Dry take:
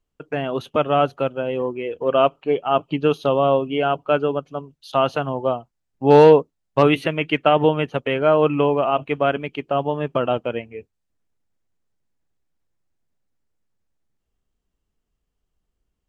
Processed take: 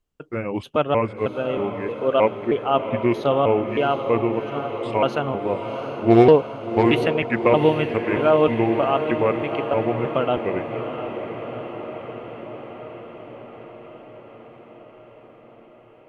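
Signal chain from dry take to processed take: trilling pitch shifter -4 st, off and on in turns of 0.314 s; diffused feedback echo 0.728 s, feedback 69%, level -9 dB; Doppler distortion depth 0.13 ms; gain -1 dB

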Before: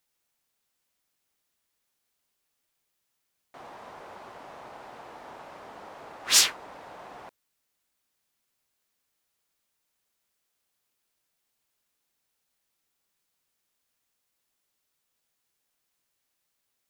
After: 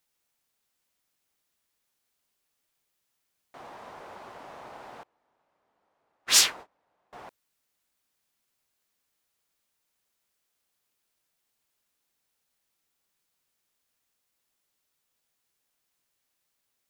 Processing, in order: 5.03–7.13 gate -39 dBFS, range -30 dB

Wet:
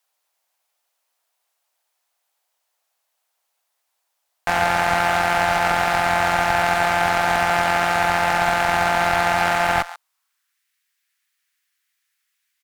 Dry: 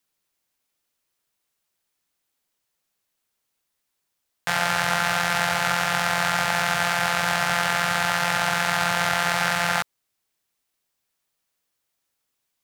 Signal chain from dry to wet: echo 0.136 s -19 dB; high-pass sweep 710 Hz -> 1800 Hz, 9.82–10.63; one-sided clip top -24 dBFS; gain +3 dB

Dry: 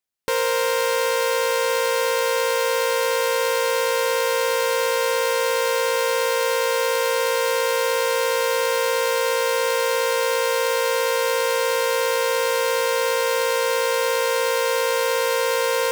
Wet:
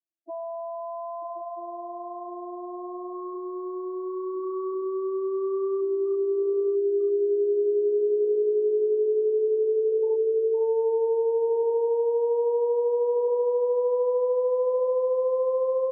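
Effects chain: vocoder on a gliding note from E4, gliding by +8 st; low shelf 250 Hz +11.5 dB; loudest bins only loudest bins 4; on a send: echo 0.94 s -13 dB; on the sum: gain -5.5 dB

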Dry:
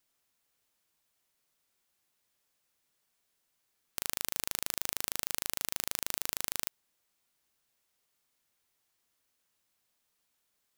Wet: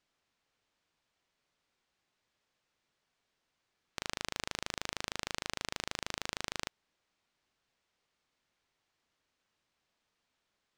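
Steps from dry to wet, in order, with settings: air absorption 120 m; gain +3 dB

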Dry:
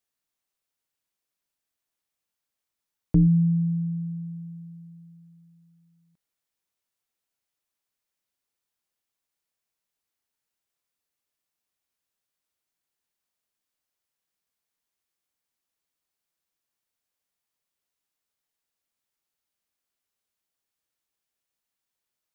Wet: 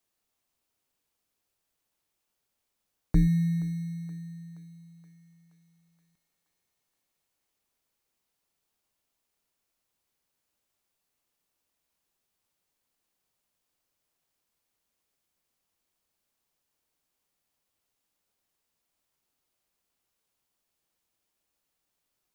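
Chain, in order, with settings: ten-band EQ 125 Hz -11 dB, 250 Hz -10 dB, 500 Hz -8 dB; in parallel at -9 dB: sample-and-hold 22×; on the sum: thinning echo 0.474 s, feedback 65%, high-pass 390 Hz, level -16 dB; gain +3.5 dB

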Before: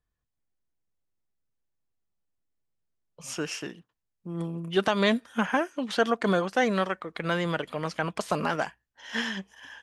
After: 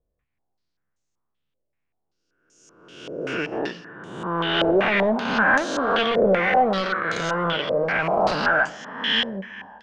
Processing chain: spectral swells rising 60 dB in 1.19 s; 3.52–4.71 bell 1100 Hz +11.5 dB 2.5 oct; plate-style reverb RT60 1.5 s, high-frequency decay 0.65×, DRR 15 dB; soft clip -21 dBFS, distortion -10 dB; stepped low-pass 5.2 Hz 550–6600 Hz; gain +2.5 dB

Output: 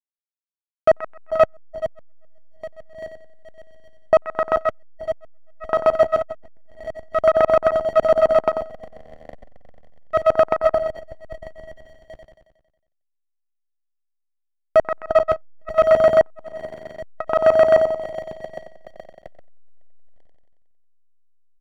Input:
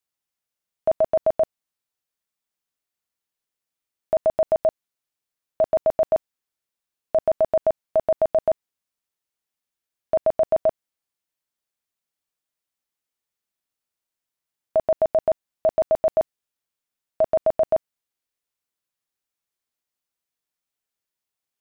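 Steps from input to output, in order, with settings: regenerating reverse delay 0.407 s, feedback 77%, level -14 dB; bell 87 Hz +4 dB 0.54 oct; notches 60/120 Hz; backlash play -28.5 dBFS; feedback echo 91 ms, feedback 58%, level -6 dB; core saturation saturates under 760 Hz; gain +8.5 dB

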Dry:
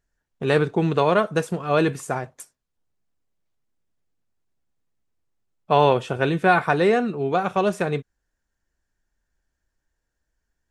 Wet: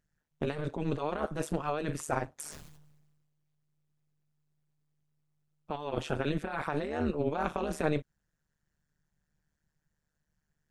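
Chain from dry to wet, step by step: negative-ratio compressor -24 dBFS, ratio -1; AM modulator 150 Hz, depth 100%; 2.35–5.76 sustainer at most 40 dB/s; gain -4 dB

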